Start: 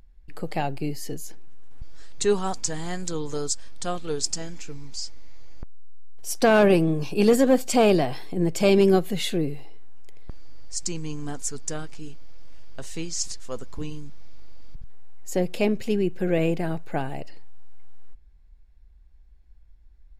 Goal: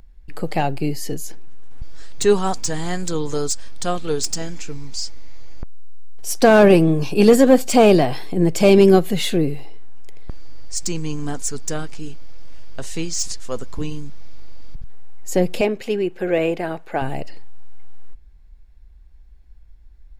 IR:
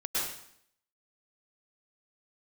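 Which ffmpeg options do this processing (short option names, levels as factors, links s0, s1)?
-filter_complex "[0:a]asettb=1/sr,asplit=3[s0][s1][s2];[s0]atrim=end=15.614[s3];[s1]atrim=start=15.61:end=17.02,asetpts=PTS-STARTPTS,afade=t=in:d=0.004:c=qsin,afade=t=out:st=1.406:d=0.004:c=qsin,bass=f=250:g=-14,treble=f=4000:g=-6[s4];[s2]atrim=start=17.016[s5];[s3][s4]acrossfade=d=0.004:c1=hsin:c2=qsin[s6];[s6][s5]acrossfade=d=0.004:c1=qsin:c2=hsin,acrossover=split=990[s7][s8];[s8]asoftclip=type=tanh:threshold=0.075[s9];[s7][s9]amix=inputs=2:normalize=0,volume=2.11"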